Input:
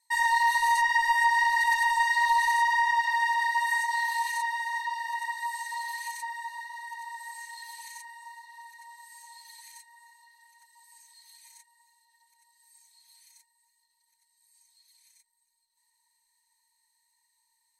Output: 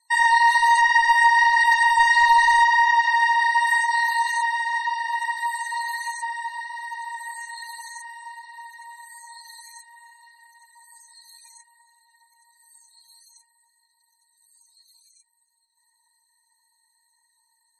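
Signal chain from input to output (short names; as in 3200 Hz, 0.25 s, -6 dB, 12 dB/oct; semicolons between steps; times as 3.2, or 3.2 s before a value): 1.97–2.64 zero-crossing step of -34 dBFS; loudest bins only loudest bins 64; gain +7 dB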